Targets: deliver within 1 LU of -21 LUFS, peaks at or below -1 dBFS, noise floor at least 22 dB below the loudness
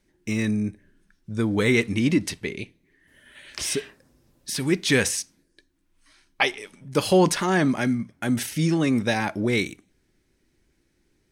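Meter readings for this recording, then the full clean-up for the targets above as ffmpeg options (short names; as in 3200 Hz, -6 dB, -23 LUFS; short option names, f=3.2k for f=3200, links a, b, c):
loudness -24.0 LUFS; peak -6.5 dBFS; loudness target -21.0 LUFS
-> -af "volume=3dB"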